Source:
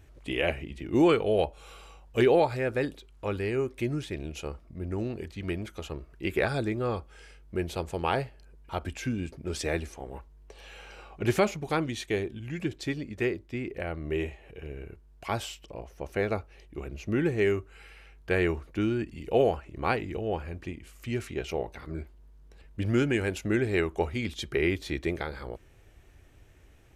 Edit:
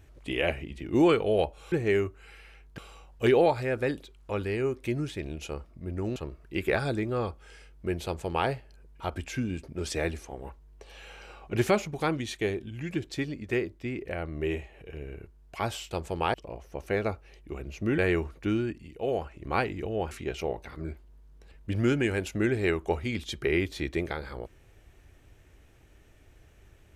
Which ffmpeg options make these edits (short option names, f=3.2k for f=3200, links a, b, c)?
-filter_complex "[0:a]asplit=10[a][b][c][d][e][f][g][h][i][j];[a]atrim=end=1.722[k];[b]atrim=start=17.238:end=18.302[l];[c]atrim=start=1.718:end=5.102[m];[d]atrim=start=5.848:end=15.602[n];[e]atrim=start=7.738:end=8.172[o];[f]atrim=start=15.598:end=17.242[p];[g]atrim=start=18.298:end=19.31,asetpts=PTS-STARTPTS,afade=t=out:st=0.592:d=0.42:silence=0.334965[q];[h]atrim=start=19.31:end=19.32,asetpts=PTS-STARTPTS,volume=-9.5dB[r];[i]atrim=start=19.32:end=20.432,asetpts=PTS-STARTPTS,afade=t=in:d=0.42:silence=0.334965[s];[j]atrim=start=21.208[t];[k][l]acrossfade=d=0.004:c1=hsin:c2=hsin[u];[u][m]acrossfade=d=0.004:c1=hsin:c2=hsin[v];[v][n]acrossfade=d=0.004:c1=hsin:c2=hsin[w];[w][o]acrossfade=d=0.004:c1=hsin:c2=hsin[x];[x][p]acrossfade=d=0.004:c1=hsin:c2=hsin[y];[q][r][s]concat=n=3:v=0:a=1[z];[y][z]acrossfade=d=0.004:c1=hsin:c2=hsin[aa];[aa][t]acrossfade=d=0.004:c1=hsin:c2=hsin"